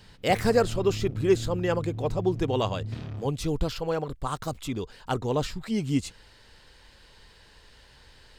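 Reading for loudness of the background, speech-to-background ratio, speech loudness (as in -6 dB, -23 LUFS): -36.5 LUFS, 8.5 dB, -28.0 LUFS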